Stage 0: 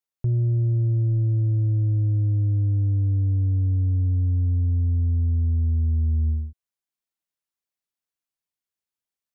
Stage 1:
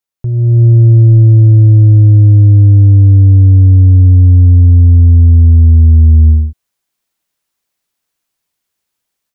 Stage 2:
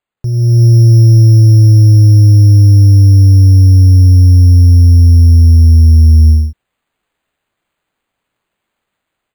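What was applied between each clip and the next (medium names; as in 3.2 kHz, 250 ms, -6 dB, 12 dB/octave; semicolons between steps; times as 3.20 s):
level rider gain up to 12 dB; trim +5 dB
careless resampling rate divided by 8×, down none, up hold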